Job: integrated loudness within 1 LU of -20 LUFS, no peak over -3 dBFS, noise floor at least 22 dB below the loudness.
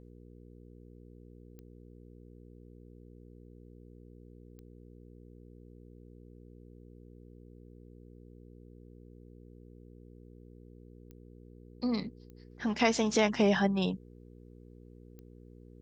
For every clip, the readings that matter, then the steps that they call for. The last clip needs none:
clicks 5; hum 60 Hz; harmonics up to 480 Hz; hum level -51 dBFS; loudness -30.0 LUFS; peak -12.5 dBFS; loudness target -20.0 LUFS
-> de-click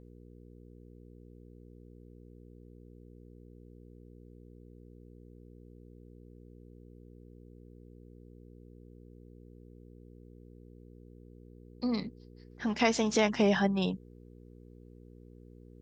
clicks 0; hum 60 Hz; harmonics up to 480 Hz; hum level -51 dBFS
-> de-hum 60 Hz, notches 8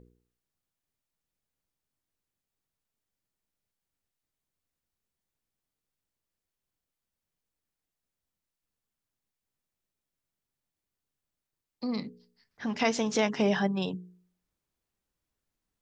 hum none; loudness -30.0 LUFS; peak -13.5 dBFS; loudness target -20.0 LUFS
-> gain +10 dB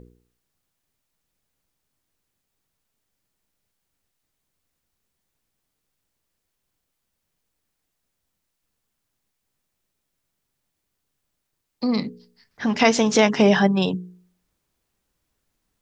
loudness -20.0 LUFS; peak -3.5 dBFS; noise floor -79 dBFS

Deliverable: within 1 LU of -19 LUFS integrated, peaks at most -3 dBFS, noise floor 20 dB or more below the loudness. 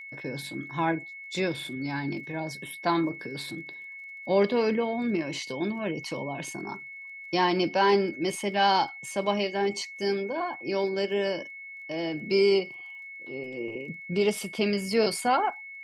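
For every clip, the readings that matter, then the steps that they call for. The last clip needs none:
ticks 26/s; steady tone 2200 Hz; tone level -40 dBFS; loudness -28.5 LUFS; peak -10.5 dBFS; loudness target -19.0 LUFS
-> de-click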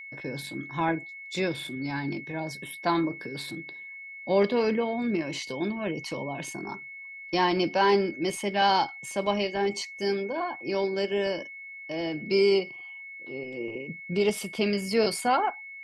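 ticks 0/s; steady tone 2200 Hz; tone level -40 dBFS
-> notch 2200 Hz, Q 30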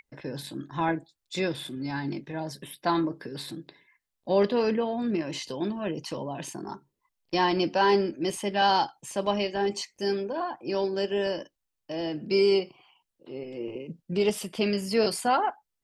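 steady tone none; loudness -28.5 LUFS; peak -11.0 dBFS; loudness target -19.0 LUFS
-> gain +9.5 dB; limiter -3 dBFS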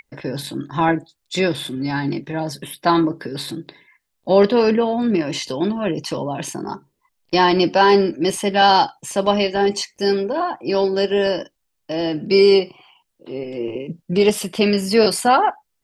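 loudness -19.0 LUFS; peak -3.0 dBFS; noise floor -74 dBFS

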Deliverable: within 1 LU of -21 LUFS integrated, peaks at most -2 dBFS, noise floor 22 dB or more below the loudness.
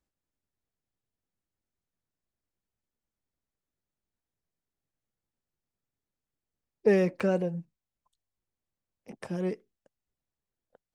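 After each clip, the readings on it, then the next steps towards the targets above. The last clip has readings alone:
dropouts 1; longest dropout 4.1 ms; loudness -28.5 LUFS; peak -12.5 dBFS; loudness target -21.0 LUFS
-> interpolate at 7.2, 4.1 ms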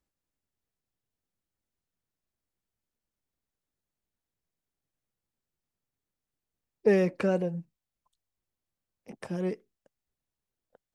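dropouts 0; loudness -28.5 LUFS; peak -12.5 dBFS; loudness target -21.0 LUFS
-> gain +7.5 dB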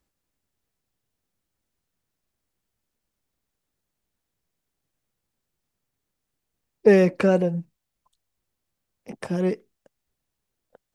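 loudness -21.0 LUFS; peak -5.0 dBFS; noise floor -82 dBFS

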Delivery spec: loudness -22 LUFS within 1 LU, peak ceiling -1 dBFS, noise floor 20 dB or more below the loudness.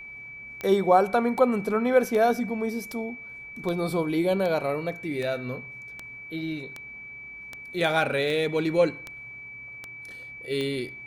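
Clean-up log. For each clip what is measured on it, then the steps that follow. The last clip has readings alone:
clicks 14; steady tone 2300 Hz; tone level -39 dBFS; loudness -26.0 LUFS; peak -6.5 dBFS; loudness target -22.0 LUFS
-> de-click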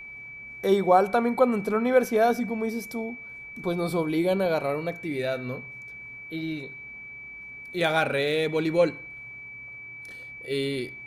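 clicks 0; steady tone 2300 Hz; tone level -39 dBFS
-> notch 2300 Hz, Q 30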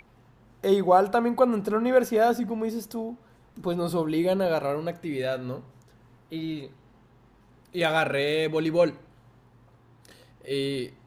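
steady tone none; loudness -25.5 LUFS; peak -6.5 dBFS; loudness target -22.0 LUFS
-> gain +3.5 dB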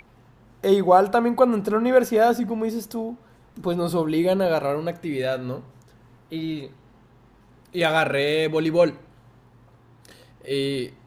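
loudness -22.0 LUFS; peak -3.0 dBFS; noise floor -55 dBFS

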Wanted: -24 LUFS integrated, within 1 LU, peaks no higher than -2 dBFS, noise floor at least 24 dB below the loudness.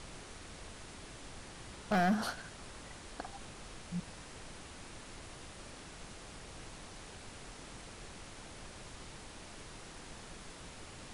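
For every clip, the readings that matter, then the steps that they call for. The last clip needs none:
clipped 0.3%; flat tops at -25.5 dBFS; noise floor -51 dBFS; noise floor target -68 dBFS; loudness -43.5 LUFS; peak -25.5 dBFS; loudness target -24.0 LUFS
-> clip repair -25.5 dBFS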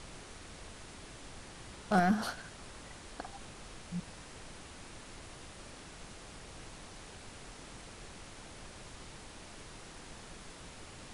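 clipped 0.0%; noise floor -51 dBFS; noise floor target -66 dBFS
-> noise print and reduce 15 dB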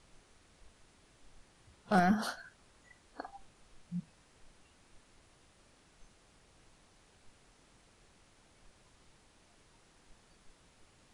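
noise floor -66 dBFS; loudness -34.5 LUFS; peak -16.5 dBFS; loudness target -24.0 LUFS
-> gain +10.5 dB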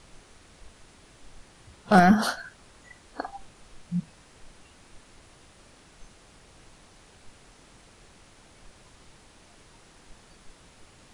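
loudness -24.0 LUFS; peak -6.0 dBFS; noise floor -56 dBFS

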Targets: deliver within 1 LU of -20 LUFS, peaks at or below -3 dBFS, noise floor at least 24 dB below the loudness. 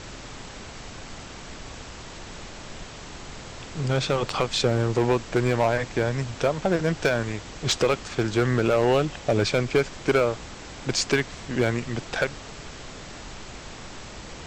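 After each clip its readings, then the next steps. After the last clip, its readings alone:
clipped 0.9%; flat tops at -14.0 dBFS; noise floor -41 dBFS; noise floor target -49 dBFS; loudness -24.5 LUFS; peak -14.0 dBFS; loudness target -20.0 LUFS
-> clip repair -14 dBFS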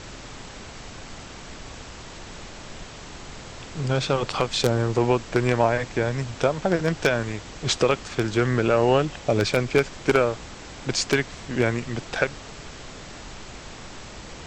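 clipped 0.0%; noise floor -41 dBFS; noise floor target -48 dBFS
-> noise print and reduce 7 dB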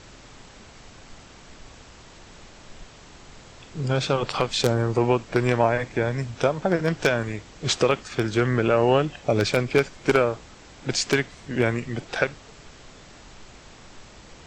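noise floor -48 dBFS; loudness -24.0 LUFS; peak -5.0 dBFS; loudness target -20.0 LUFS
-> gain +4 dB; limiter -3 dBFS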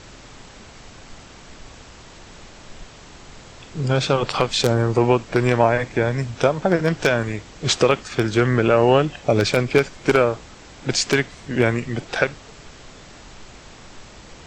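loudness -20.0 LUFS; peak -3.0 dBFS; noise floor -44 dBFS

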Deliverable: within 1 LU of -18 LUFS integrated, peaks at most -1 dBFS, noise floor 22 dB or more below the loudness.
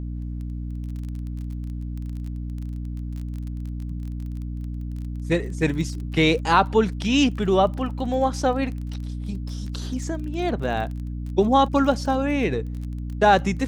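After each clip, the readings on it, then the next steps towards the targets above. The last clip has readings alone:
ticks 24/s; hum 60 Hz; harmonics up to 300 Hz; hum level -28 dBFS; loudness -24.5 LUFS; peak -4.0 dBFS; loudness target -18.0 LUFS
-> de-click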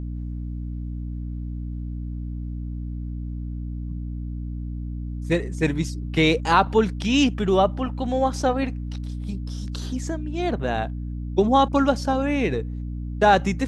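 ticks 0/s; hum 60 Hz; harmonics up to 300 Hz; hum level -28 dBFS
-> de-hum 60 Hz, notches 5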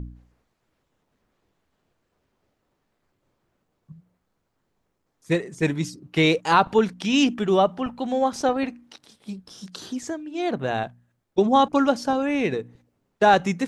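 hum none; loudness -22.5 LUFS; peak -4.5 dBFS; loudness target -18.0 LUFS
-> gain +4.5 dB; limiter -1 dBFS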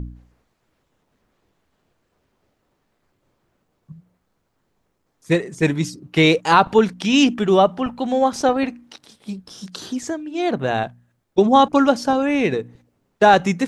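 loudness -18.5 LUFS; peak -1.0 dBFS; noise floor -71 dBFS

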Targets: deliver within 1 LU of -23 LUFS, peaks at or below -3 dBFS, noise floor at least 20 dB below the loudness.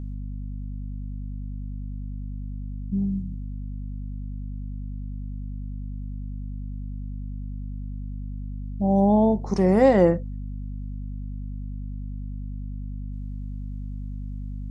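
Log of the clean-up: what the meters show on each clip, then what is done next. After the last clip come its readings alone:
hum 50 Hz; harmonics up to 250 Hz; hum level -30 dBFS; loudness -28.5 LUFS; peak -6.0 dBFS; loudness target -23.0 LUFS
-> notches 50/100/150/200/250 Hz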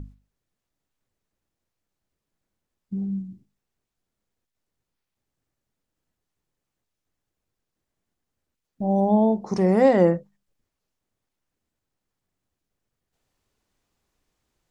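hum none; loudness -21.5 LUFS; peak -5.5 dBFS; loudness target -23.0 LUFS
-> gain -1.5 dB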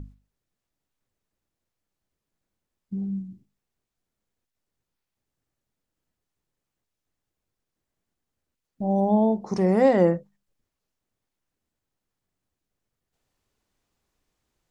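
loudness -23.0 LUFS; peak -7.0 dBFS; noise floor -85 dBFS

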